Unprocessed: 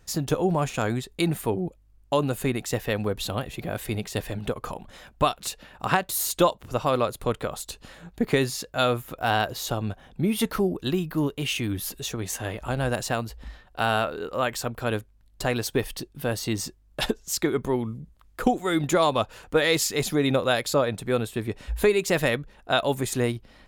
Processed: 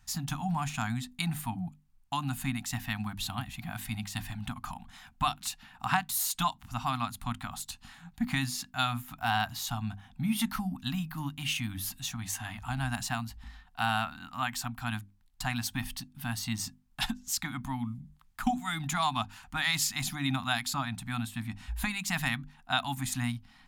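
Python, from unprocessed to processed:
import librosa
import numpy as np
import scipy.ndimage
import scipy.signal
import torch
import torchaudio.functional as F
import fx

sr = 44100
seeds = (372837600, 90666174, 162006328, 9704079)

y = scipy.signal.sosfilt(scipy.signal.ellip(3, 1.0, 40, [260.0, 760.0], 'bandstop', fs=sr, output='sos'), x)
y = fx.hum_notches(y, sr, base_hz=50, count=6)
y = F.gain(torch.from_numpy(y), -3.5).numpy()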